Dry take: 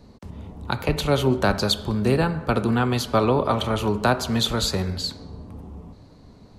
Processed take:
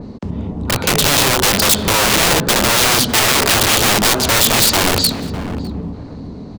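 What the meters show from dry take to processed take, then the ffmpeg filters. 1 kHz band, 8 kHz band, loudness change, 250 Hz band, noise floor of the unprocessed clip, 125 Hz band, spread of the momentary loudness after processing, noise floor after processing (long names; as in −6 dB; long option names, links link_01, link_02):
+8.5 dB, +21.5 dB, +10.5 dB, +4.0 dB, −49 dBFS, +3.0 dB, 15 LU, −31 dBFS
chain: -filter_complex "[0:a]lowpass=6800,equalizer=frequency=240:width_type=o:width=2.7:gain=9.5,acompressor=mode=upward:threshold=-35dB:ratio=2.5,alimiter=limit=-9dB:level=0:latency=1:release=138,aeval=exprs='(mod(8.41*val(0)+1,2)-1)/8.41':channel_layout=same,asplit=2[link_01][link_02];[link_02]adelay=604,lowpass=frequency=1500:poles=1,volume=-11.5dB,asplit=2[link_03][link_04];[link_04]adelay=604,lowpass=frequency=1500:poles=1,volume=0.2,asplit=2[link_05][link_06];[link_06]adelay=604,lowpass=frequency=1500:poles=1,volume=0.2[link_07];[link_01][link_03][link_05][link_07]amix=inputs=4:normalize=0,adynamicequalizer=threshold=0.0112:dfrequency=2600:dqfactor=0.7:tfrequency=2600:tqfactor=0.7:attack=5:release=100:ratio=0.375:range=3:mode=boostabove:tftype=highshelf,volume=8dB"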